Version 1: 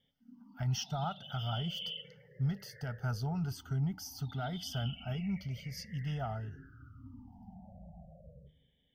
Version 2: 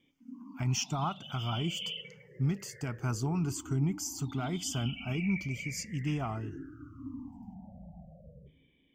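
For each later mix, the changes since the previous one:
master: remove fixed phaser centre 1600 Hz, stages 8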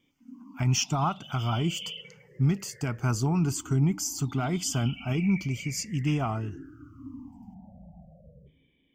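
speech +6.0 dB

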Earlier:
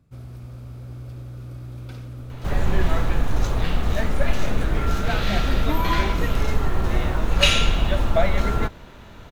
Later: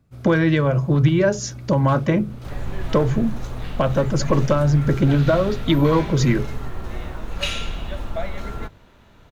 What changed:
speech: unmuted; second sound -8.0 dB; master: add notches 50/100/150 Hz

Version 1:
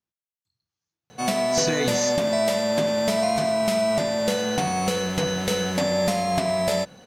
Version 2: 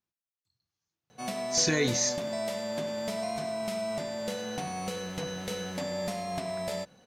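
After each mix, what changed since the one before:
background -11.0 dB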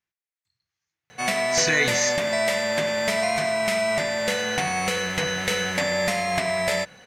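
background +8.5 dB; master: add graphic EQ 250/2000/8000 Hz -5/+12/+3 dB

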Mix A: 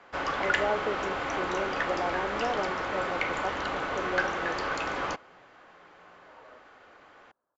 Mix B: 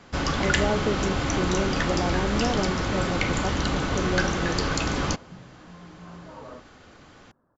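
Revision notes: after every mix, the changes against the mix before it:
second sound +9.5 dB; master: remove three-band isolator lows -19 dB, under 410 Hz, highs -15 dB, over 2700 Hz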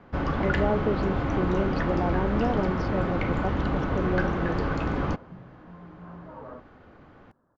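first sound: add Bessel low-pass 1300 Hz, order 2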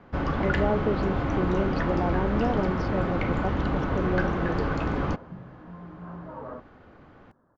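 second sound +3.5 dB

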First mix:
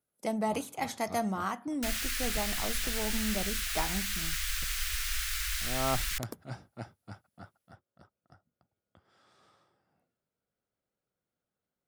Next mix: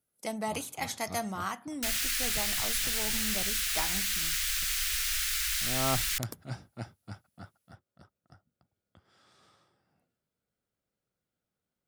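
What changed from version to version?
first sound: add low shelf 410 Hz +9 dB; master: add tilt shelf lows -5 dB, about 1400 Hz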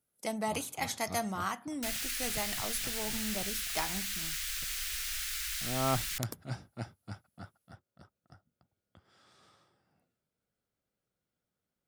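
second sound -6.0 dB

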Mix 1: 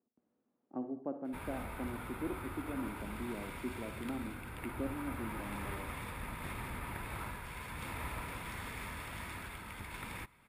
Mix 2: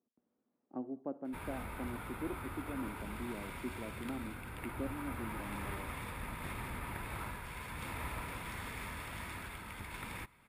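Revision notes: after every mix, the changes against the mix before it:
speech: send -9.5 dB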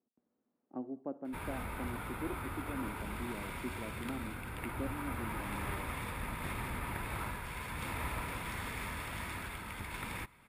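background +3.0 dB

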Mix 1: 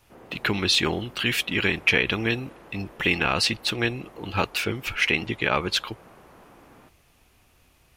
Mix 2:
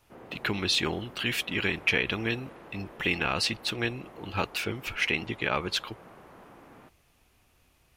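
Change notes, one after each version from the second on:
speech -5.0 dB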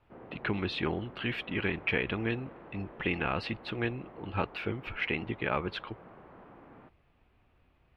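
master: add air absorption 450 m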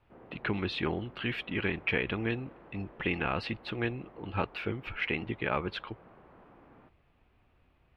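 background -4.0 dB

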